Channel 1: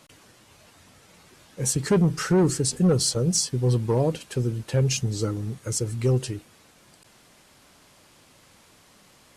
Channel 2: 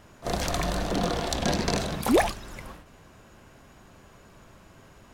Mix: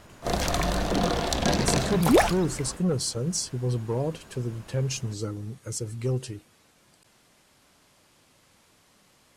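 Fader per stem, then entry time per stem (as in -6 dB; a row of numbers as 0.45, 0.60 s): -5.5, +2.0 dB; 0.00, 0.00 s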